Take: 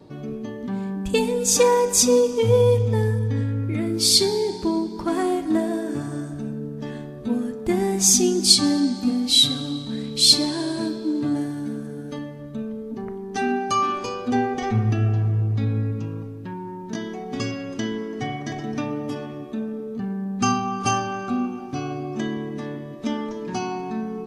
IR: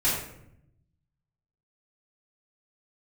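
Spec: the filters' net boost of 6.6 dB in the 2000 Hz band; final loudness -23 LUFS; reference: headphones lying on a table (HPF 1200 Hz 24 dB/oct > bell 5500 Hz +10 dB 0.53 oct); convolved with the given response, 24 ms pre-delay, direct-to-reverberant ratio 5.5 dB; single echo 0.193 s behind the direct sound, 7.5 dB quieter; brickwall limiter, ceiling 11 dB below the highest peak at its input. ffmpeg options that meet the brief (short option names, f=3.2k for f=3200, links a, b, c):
-filter_complex "[0:a]equalizer=f=2k:t=o:g=8.5,alimiter=limit=-11dB:level=0:latency=1,aecho=1:1:193:0.422,asplit=2[a][b];[1:a]atrim=start_sample=2205,adelay=24[c];[b][c]afir=irnorm=-1:irlink=0,volume=-17.5dB[d];[a][d]amix=inputs=2:normalize=0,highpass=f=1.2k:w=0.5412,highpass=f=1.2k:w=1.3066,equalizer=f=5.5k:t=o:w=0.53:g=10,volume=-2.5dB"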